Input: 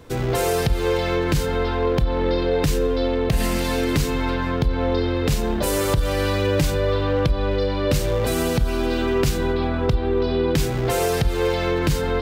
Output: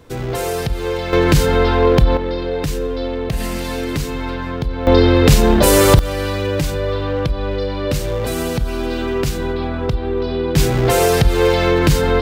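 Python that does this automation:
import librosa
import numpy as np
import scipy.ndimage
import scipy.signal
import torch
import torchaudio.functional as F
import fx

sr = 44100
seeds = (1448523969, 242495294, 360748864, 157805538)

y = fx.gain(x, sr, db=fx.steps((0.0, -0.5), (1.13, 8.0), (2.17, -1.0), (4.87, 10.5), (5.99, 0.5), (10.56, 7.0)))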